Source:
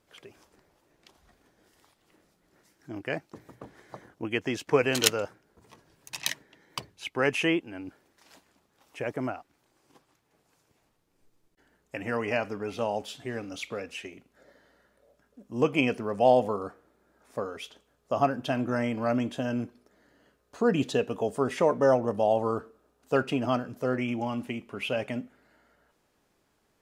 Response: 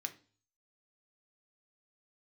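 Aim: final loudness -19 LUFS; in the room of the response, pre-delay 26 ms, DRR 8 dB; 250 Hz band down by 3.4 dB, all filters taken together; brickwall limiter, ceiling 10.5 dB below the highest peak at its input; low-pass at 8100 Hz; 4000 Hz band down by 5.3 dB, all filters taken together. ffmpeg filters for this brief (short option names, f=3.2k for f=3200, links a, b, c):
-filter_complex "[0:a]lowpass=8.1k,equalizer=f=250:t=o:g=-4,equalizer=f=4k:t=o:g=-7.5,alimiter=limit=-17.5dB:level=0:latency=1,asplit=2[a][b];[1:a]atrim=start_sample=2205,adelay=26[c];[b][c]afir=irnorm=-1:irlink=0,volume=-7dB[d];[a][d]amix=inputs=2:normalize=0,volume=13.5dB"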